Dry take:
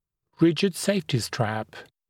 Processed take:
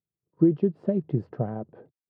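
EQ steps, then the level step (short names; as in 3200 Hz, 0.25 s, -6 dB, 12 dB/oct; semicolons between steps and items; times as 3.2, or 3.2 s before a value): Butterworth band-pass 250 Hz, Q 0.58; 0.0 dB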